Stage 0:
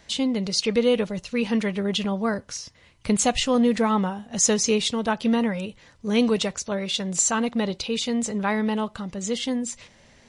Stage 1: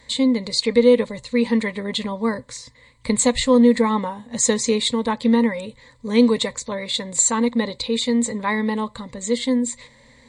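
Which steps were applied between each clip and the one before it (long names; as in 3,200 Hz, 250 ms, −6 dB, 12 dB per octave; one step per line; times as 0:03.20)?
EQ curve with evenly spaced ripples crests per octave 1, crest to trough 14 dB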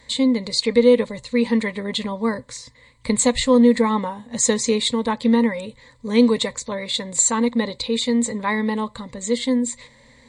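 no processing that can be heard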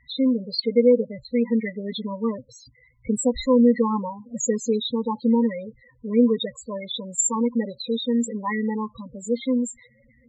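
spectral peaks only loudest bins 8
level −2.5 dB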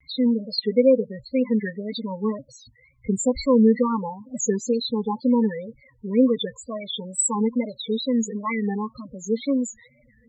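tape wow and flutter 140 cents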